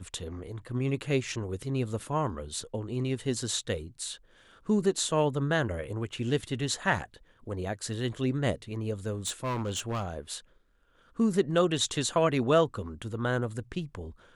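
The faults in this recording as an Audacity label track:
9.260000	10.080000	clipped -27.5 dBFS

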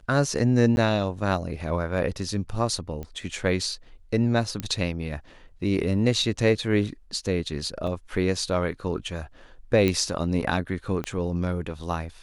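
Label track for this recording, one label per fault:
0.760000	0.770000	gap 11 ms
3.030000	3.030000	pop -23 dBFS
4.600000	4.600000	pop -14 dBFS
7.870000	7.870000	gap 3.6 ms
9.880000	9.880000	pop -11 dBFS
11.040000	11.040000	pop -17 dBFS

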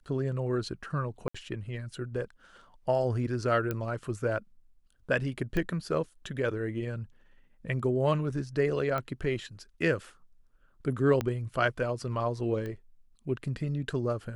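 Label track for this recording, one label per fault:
1.280000	1.340000	gap 65 ms
3.710000	3.710000	pop -18 dBFS
5.570000	5.570000	pop -19 dBFS
8.980000	8.980000	pop -20 dBFS
11.210000	11.210000	pop -16 dBFS
12.660000	12.660000	pop -26 dBFS

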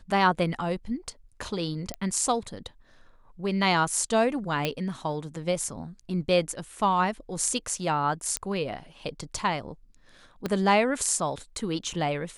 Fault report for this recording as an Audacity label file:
1.940000	1.940000	pop -16 dBFS
4.650000	4.650000	pop -12 dBFS
8.370000	8.370000	pop -11 dBFS
10.460000	10.460000	pop -15 dBFS

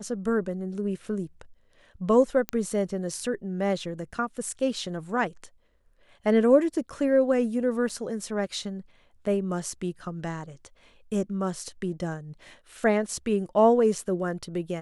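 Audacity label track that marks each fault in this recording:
2.490000	2.490000	pop -13 dBFS
7.890000	7.900000	gap 5.1 ms

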